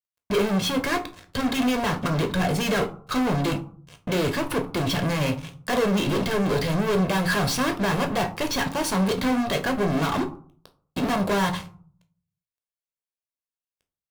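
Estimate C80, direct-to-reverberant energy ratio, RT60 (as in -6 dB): 18.5 dB, 6.0 dB, 0.50 s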